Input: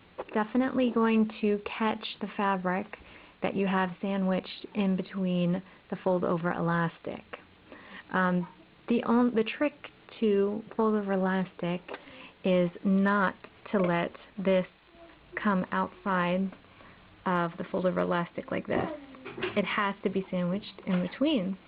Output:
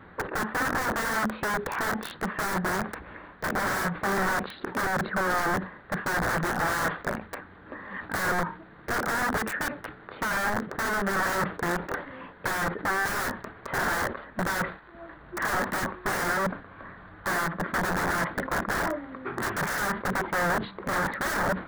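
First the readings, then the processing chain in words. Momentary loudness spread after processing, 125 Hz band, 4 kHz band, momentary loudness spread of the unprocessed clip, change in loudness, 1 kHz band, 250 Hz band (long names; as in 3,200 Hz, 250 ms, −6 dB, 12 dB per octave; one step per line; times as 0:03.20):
10 LU, −3.0 dB, +2.5 dB, 14 LU, +1.0 dB, +4.5 dB, −5.5 dB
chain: wrap-around overflow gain 29 dB
high shelf with overshoot 2,100 Hz −8 dB, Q 3
level that may fall only so fast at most 140 dB per second
level +7 dB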